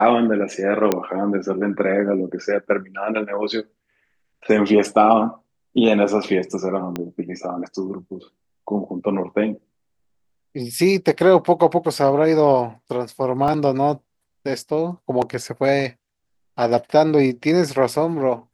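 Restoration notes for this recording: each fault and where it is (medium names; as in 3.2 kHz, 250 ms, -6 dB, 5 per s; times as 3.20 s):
0.92 s: pop -4 dBFS
6.96 s: pop -12 dBFS
13.48 s: dropout 2.5 ms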